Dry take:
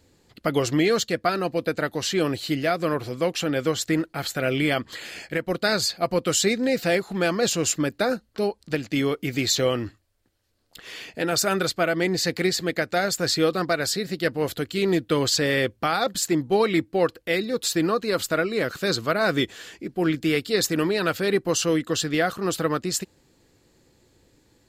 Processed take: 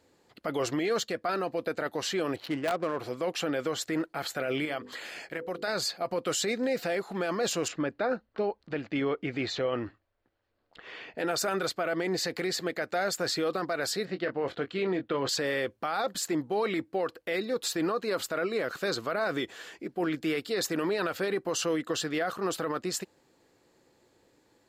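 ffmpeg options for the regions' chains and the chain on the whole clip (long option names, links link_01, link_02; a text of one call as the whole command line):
ffmpeg -i in.wav -filter_complex "[0:a]asettb=1/sr,asplit=3[link_01][link_02][link_03];[link_01]atrim=end=2.364[link_04];[link_02]atrim=start=2.36:end=2.99,asetpts=PTS-STARTPTS,afade=type=in:duration=0.004:curve=qsin,afade=type=out:start_time=0.626:duration=0.004:curve=qsin,adynamicsmooth=sensitivity=4.5:basefreq=920,aeval=exprs='(mod(4.47*val(0)+1,2)-1)/4.47':channel_layout=same[link_05];[link_03]atrim=start=2.986[link_06];[link_04][link_05]acrossfade=duration=0.004:curve1=hsin:curve2=qsin[link_07];[link_07][link_06]acrossfade=duration=0.004:curve1=qsin:curve2=hsin,asettb=1/sr,asplit=3[link_08][link_09][link_10];[link_08]atrim=end=4.654[link_11];[link_09]atrim=start=4.65:end=5.68,asetpts=PTS-STARTPTS,afade=type=in:duration=0.004:curve=qsin,afade=type=out:start_time=1.026:duration=0.004:curve=qsin,bandreject=frequency=50:width_type=h:width=6,bandreject=frequency=100:width_type=h:width=6,bandreject=frequency=150:width_type=h:width=6,bandreject=frequency=200:width_type=h:width=6,bandreject=frequency=250:width_type=h:width=6,bandreject=frequency=300:width_type=h:width=6,bandreject=frequency=350:width_type=h:width=6,bandreject=frequency=400:width_type=h:width=6,bandreject=frequency=450:width_type=h:width=6,bandreject=frequency=500:width_type=h:width=6,acompressor=threshold=-30dB:ratio=2.5:attack=3.2:release=140:knee=1:detection=peak[link_12];[link_10]atrim=start=5.676[link_13];[link_11][link_12]acrossfade=duration=0.004:curve1=hsin:curve2=qsin[link_14];[link_14][link_13]acrossfade=duration=0.004:curve1=qsin:curve2=hsin,asettb=1/sr,asplit=3[link_15][link_16][link_17];[link_15]atrim=end=7.684[link_18];[link_16]atrim=start=7.68:end=11.18,asetpts=PTS-STARTPTS,afade=type=in:duration=0.004:curve=qsin,afade=type=out:start_time=3.496:duration=0.004:curve=qsin,lowpass=3100,lowshelf=frequency=70:gain=10[link_19];[link_17]atrim=start=11.176[link_20];[link_18][link_19]acrossfade=duration=0.004:curve1=hsin:curve2=qsin[link_21];[link_21][link_20]acrossfade=duration=0.004:curve1=qsin:curve2=hsin,asettb=1/sr,asplit=3[link_22][link_23][link_24];[link_22]atrim=end=14.054[link_25];[link_23]atrim=start=14.05:end=15.29,asetpts=PTS-STARTPTS,afade=type=in:duration=0.004:curve=qsin,afade=type=out:start_time=1.236:duration=0.004:curve=qsin,lowpass=3200,asplit=2[link_26][link_27];[link_27]adelay=22,volume=-10dB[link_28];[link_26][link_28]amix=inputs=2:normalize=0,atrim=end_sample=54684[link_29];[link_24]atrim=start=15.286[link_30];[link_25][link_29]acrossfade=duration=0.004:curve1=hsin:curve2=qsin[link_31];[link_31][link_30]acrossfade=duration=0.004:curve1=qsin:curve2=hsin,equalizer=frequency=830:width_type=o:width=2.8:gain=8,alimiter=limit=-13dB:level=0:latency=1:release=17,lowshelf=frequency=100:gain=-11,volume=-7.5dB" out.wav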